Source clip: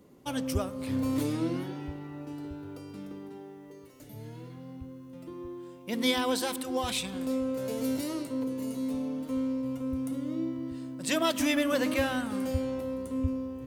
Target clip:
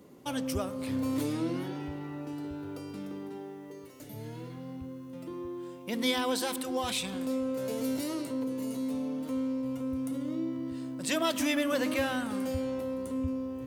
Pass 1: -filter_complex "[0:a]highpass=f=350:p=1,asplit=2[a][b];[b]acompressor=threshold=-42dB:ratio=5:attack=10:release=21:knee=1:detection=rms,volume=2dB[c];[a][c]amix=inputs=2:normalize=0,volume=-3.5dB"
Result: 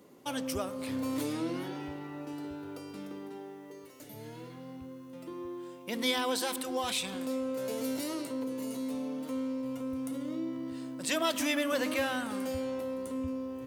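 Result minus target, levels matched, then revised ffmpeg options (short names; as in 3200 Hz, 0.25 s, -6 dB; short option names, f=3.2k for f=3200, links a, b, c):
125 Hz band -5.0 dB
-filter_complex "[0:a]highpass=f=110:p=1,asplit=2[a][b];[b]acompressor=threshold=-42dB:ratio=5:attack=10:release=21:knee=1:detection=rms,volume=2dB[c];[a][c]amix=inputs=2:normalize=0,volume=-3.5dB"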